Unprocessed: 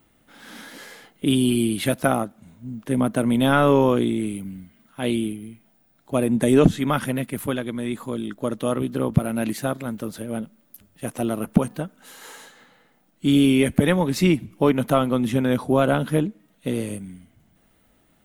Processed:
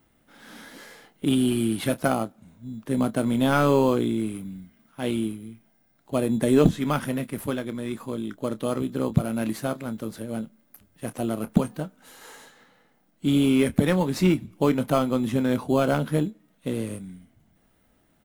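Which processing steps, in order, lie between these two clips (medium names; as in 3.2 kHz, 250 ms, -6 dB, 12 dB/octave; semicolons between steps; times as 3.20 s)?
in parallel at -10.5 dB: sample-and-hold 12×; on the sum: doubling 27 ms -13.5 dB; trim -5 dB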